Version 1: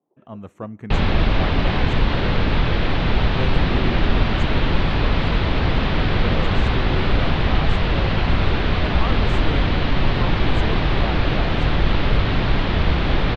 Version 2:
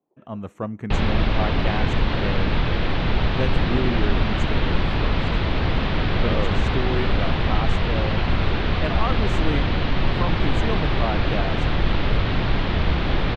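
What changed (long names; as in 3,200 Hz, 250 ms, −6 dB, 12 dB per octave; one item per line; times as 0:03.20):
speech +4.0 dB
reverb: off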